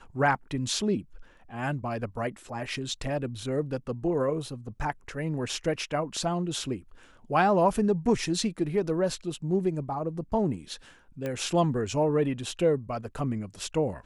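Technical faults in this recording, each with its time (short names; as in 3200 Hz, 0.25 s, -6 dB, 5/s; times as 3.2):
11.26 pop -20 dBFS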